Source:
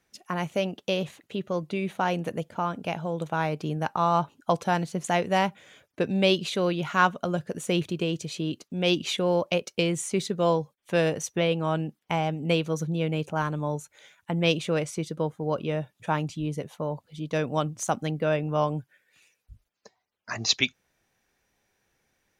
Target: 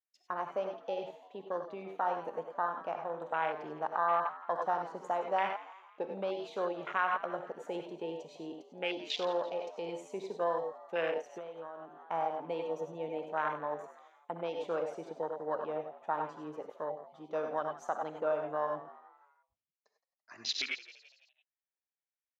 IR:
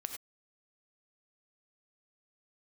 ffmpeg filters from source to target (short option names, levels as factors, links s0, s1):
-filter_complex "[0:a]agate=range=0.251:threshold=0.00178:ratio=16:detection=peak[s0];[1:a]atrim=start_sample=2205[s1];[s0][s1]afir=irnorm=-1:irlink=0,alimiter=limit=0.126:level=0:latency=1:release=109,afwtdn=0.0251,highpass=610,equalizer=f=9400:t=o:w=0.22:g=-13,asplit=5[s2][s3][s4][s5][s6];[s3]adelay=168,afreqshift=91,volume=0.141[s7];[s4]adelay=336,afreqshift=182,volume=0.0653[s8];[s5]adelay=504,afreqshift=273,volume=0.0299[s9];[s6]adelay=672,afreqshift=364,volume=0.0138[s10];[s2][s7][s8][s9][s10]amix=inputs=5:normalize=0,asplit=3[s11][s12][s13];[s11]afade=t=out:st=11.2:d=0.02[s14];[s12]acompressor=threshold=0.00891:ratio=12,afade=t=in:st=11.2:d=0.02,afade=t=out:st=12:d=0.02[s15];[s13]afade=t=in:st=12:d=0.02[s16];[s14][s15][s16]amix=inputs=3:normalize=0,highshelf=f=7200:g=-10"